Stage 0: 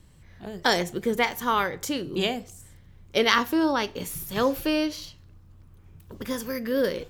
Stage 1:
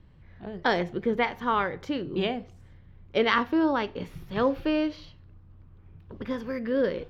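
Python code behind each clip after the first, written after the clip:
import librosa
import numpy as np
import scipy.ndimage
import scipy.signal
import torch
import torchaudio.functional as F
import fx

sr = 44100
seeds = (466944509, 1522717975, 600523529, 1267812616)

y = fx.air_absorb(x, sr, metres=310.0)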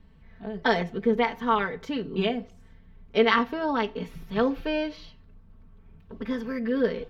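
y = x + 0.87 * np.pad(x, (int(4.5 * sr / 1000.0), 0))[:len(x)]
y = F.gain(torch.from_numpy(y), -1.5).numpy()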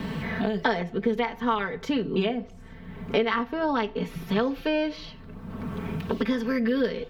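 y = fx.band_squash(x, sr, depth_pct=100)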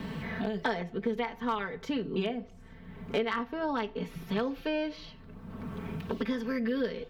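y = np.clip(x, -10.0 ** (-14.5 / 20.0), 10.0 ** (-14.5 / 20.0))
y = F.gain(torch.from_numpy(y), -6.0).numpy()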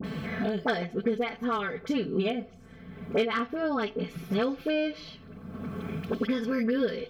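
y = fx.notch_comb(x, sr, f0_hz=930.0)
y = fx.dispersion(y, sr, late='highs', ms=41.0, hz=1300.0)
y = F.gain(torch.from_numpy(y), 4.0).numpy()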